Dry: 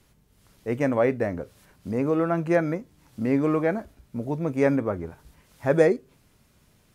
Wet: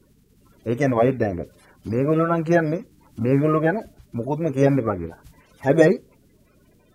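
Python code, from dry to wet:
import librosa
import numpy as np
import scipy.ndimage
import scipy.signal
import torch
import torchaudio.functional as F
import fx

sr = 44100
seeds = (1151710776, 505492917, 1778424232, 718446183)

y = fx.spec_quant(x, sr, step_db=30)
y = y * 10.0 ** (4.5 / 20.0)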